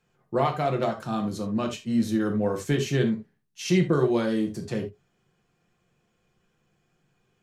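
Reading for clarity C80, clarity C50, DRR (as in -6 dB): 17.5 dB, 10.5 dB, 2.5 dB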